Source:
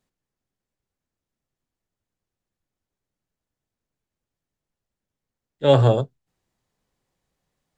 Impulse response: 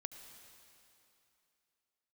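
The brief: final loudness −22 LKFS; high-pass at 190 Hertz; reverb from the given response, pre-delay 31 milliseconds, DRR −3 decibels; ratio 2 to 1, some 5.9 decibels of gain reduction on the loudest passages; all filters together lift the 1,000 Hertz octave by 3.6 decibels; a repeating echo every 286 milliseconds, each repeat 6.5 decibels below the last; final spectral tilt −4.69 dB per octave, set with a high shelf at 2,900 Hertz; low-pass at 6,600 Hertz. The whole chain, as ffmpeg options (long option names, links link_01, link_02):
-filter_complex "[0:a]highpass=190,lowpass=6600,equalizer=frequency=1000:width_type=o:gain=4,highshelf=frequency=2900:gain=7,acompressor=threshold=-19dB:ratio=2,aecho=1:1:286|572|858|1144|1430|1716:0.473|0.222|0.105|0.0491|0.0231|0.0109,asplit=2[link_01][link_02];[1:a]atrim=start_sample=2205,adelay=31[link_03];[link_02][link_03]afir=irnorm=-1:irlink=0,volume=6.5dB[link_04];[link_01][link_04]amix=inputs=2:normalize=0,volume=-2dB"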